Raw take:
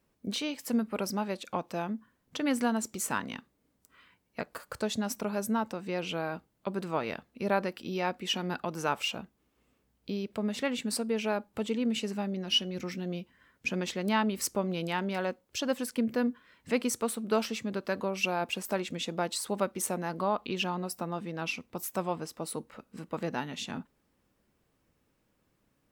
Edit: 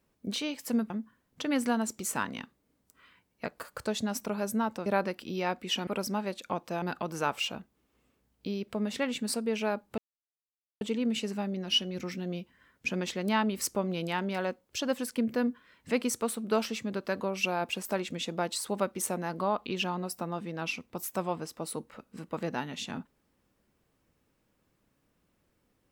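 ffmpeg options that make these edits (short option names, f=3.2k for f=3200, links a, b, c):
-filter_complex "[0:a]asplit=6[a][b][c][d][e][f];[a]atrim=end=0.902[g];[b]atrim=start=1.848:end=5.812[h];[c]atrim=start=7.438:end=8.452[i];[d]atrim=start=0.898:end=1.852[j];[e]atrim=start=8.448:end=11.61,asetpts=PTS-STARTPTS,afade=t=out:st=3.158:d=0.004:c=hsin,apad=pad_dur=0.83[k];[f]atrim=start=11.61,asetpts=PTS-STARTPTS,afade=t=in:d=0.004:c=hsin[l];[g][h]acrossfade=d=0.004:c1=hsin:c2=hsin[m];[m][i]acrossfade=d=0.004:c1=hsin:c2=hsin[n];[n][j]acrossfade=d=0.004:c1=hsin:c2=hsin[o];[k][l]concat=n=2:v=0:a=1[p];[o][p]acrossfade=d=0.004:c1=hsin:c2=hsin"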